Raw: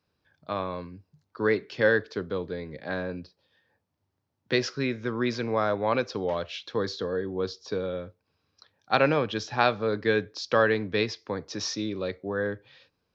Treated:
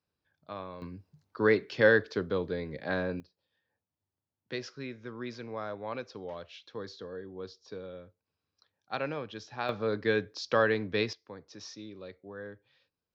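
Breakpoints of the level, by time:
−10 dB
from 0:00.82 0 dB
from 0:03.20 −12 dB
from 0:09.69 −3.5 dB
from 0:11.13 −14 dB

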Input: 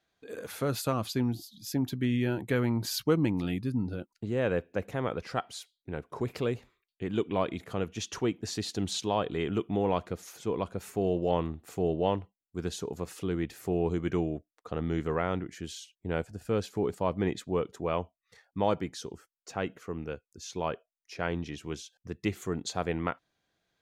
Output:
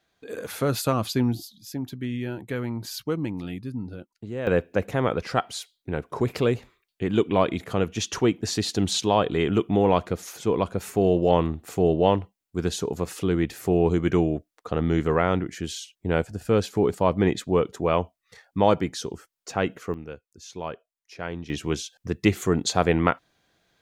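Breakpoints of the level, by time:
+6 dB
from 0:01.52 −2 dB
from 0:04.47 +8 dB
from 0:19.94 −1 dB
from 0:21.50 +10.5 dB

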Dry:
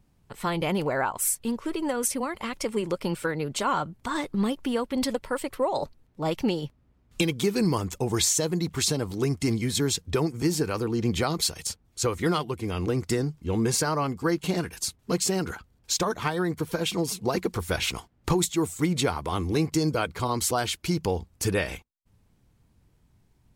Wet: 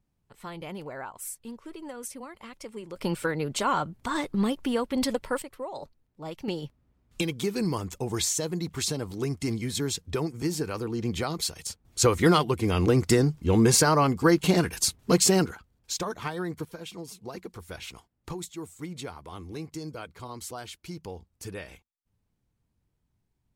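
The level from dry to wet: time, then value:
−12 dB
from 0:02.96 0 dB
from 0:05.42 −10.5 dB
from 0:06.48 −4 dB
from 0:11.85 +5 dB
from 0:15.46 −5.5 dB
from 0:16.65 −13 dB

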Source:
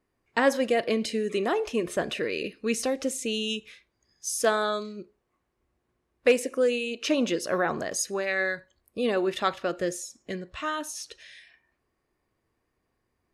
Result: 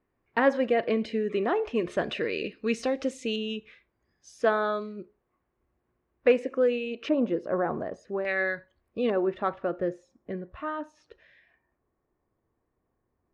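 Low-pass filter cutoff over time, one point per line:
2,300 Hz
from 0:01.76 3,800 Hz
from 0:03.36 2,100 Hz
from 0:07.09 1,000 Hz
from 0:08.25 2,600 Hz
from 0:09.10 1,200 Hz

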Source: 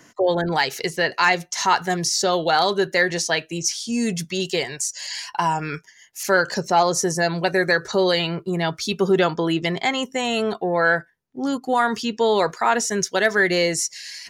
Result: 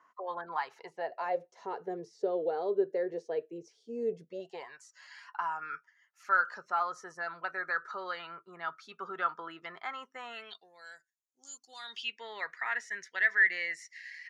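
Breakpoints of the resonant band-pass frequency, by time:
resonant band-pass, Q 7.4
0:00.65 1,100 Hz
0:01.57 450 Hz
0:04.27 450 Hz
0:04.74 1,300 Hz
0:10.30 1,300 Hz
0:10.71 7,000 Hz
0:11.54 7,000 Hz
0:12.25 1,900 Hz

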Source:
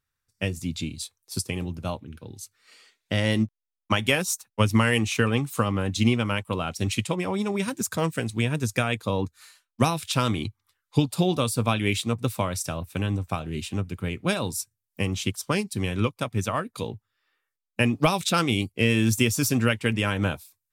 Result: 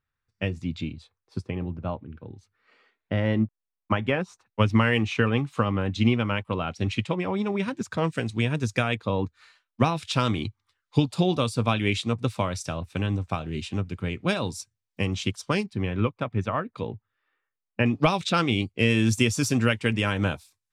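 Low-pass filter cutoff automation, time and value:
2,900 Hz
from 0:00.93 1,700 Hz
from 0:04.46 3,300 Hz
from 0:08.07 5,600 Hz
from 0:08.95 3,300 Hz
from 0:09.96 5,700 Hz
from 0:15.66 2,300 Hz
from 0:17.86 4,600 Hz
from 0:18.79 7,500 Hz

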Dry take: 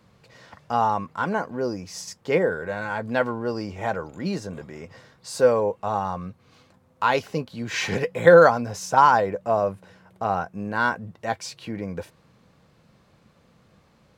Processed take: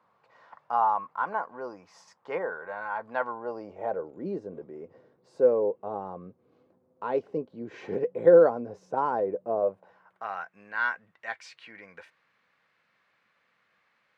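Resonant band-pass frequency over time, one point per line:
resonant band-pass, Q 2
0:03.20 1,000 Hz
0:04.17 390 Hz
0:09.53 390 Hz
0:10.30 1,900 Hz

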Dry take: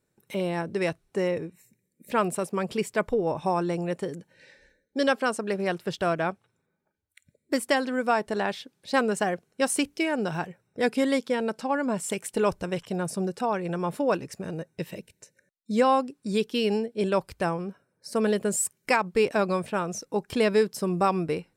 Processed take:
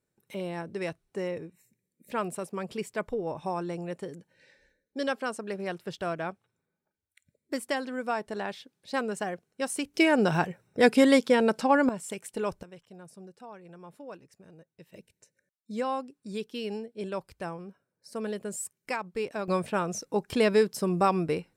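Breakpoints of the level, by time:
−6.5 dB
from 0:09.94 +4.5 dB
from 0:11.89 −7 dB
from 0:12.63 −19 dB
from 0:14.94 −9.5 dB
from 0:19.48 −0.5 dB

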